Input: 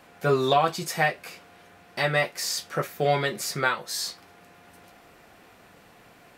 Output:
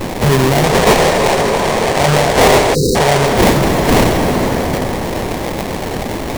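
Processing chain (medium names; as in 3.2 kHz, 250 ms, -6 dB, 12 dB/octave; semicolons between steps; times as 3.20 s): tone controls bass +12 dB, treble +13 dB; in parallel at -7.5 dB: word length cut 6-bit, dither triangular; on the sum: resonant high shelf 7.6 kHz +12 dB, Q 3; sample-rate reducer 1.4 kHz, jitter 20%; time-frequency box 0.65–3.27 s, 370–10000 Hz +7 dB; on a send at -10.5 dB: reverberation RT60 4.5 s, pre-delay 39 ms; on the sum: saturation -4 dBFS, distortion -9 dB; spectral selection erased 2.74–2.95 s, 530–3800 Hz; loudness maximiser +13 dB; trim -4 dB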